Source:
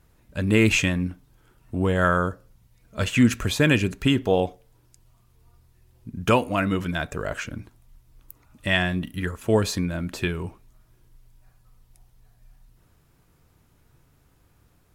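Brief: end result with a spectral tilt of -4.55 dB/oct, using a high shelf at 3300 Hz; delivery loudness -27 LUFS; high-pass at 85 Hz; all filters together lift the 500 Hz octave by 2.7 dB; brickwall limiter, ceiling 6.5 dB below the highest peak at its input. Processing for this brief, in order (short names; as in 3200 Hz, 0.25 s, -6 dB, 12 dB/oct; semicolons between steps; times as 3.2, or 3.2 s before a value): HPF 85 Hz; bell 500 Hz +3 dB; high shelf 3300 Hz +6.5 dB; gain -3.5 dB; limiter -12 dBFS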